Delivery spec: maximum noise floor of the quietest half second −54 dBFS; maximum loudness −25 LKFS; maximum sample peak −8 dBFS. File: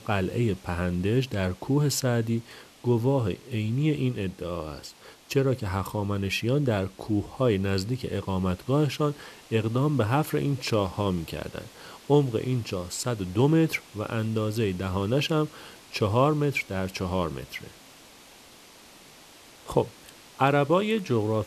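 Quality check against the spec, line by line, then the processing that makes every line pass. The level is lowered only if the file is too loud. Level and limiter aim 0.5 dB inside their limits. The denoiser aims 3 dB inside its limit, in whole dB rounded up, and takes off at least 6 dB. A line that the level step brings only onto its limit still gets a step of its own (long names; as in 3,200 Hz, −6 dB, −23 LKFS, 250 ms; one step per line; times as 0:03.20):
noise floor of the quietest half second −51 dBFS: out of spec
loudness −27.0 LKFS: in spec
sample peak −6.5 dBFS: out of spec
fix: broadband denoise 6 dB, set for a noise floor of −51 dBFS
brickwall limiter −8.5 dBFS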